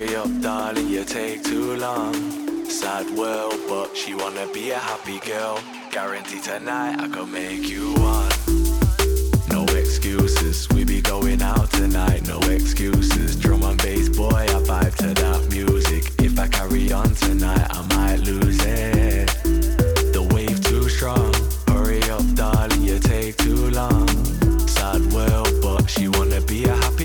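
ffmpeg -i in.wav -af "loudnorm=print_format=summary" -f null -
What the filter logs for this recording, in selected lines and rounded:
Input Integrated:    -20.7 LUFS
Input True Peak:      -8.3 dBTP
Input LRA:             5.7 LU
Input Threshold:     -30.7 LUFS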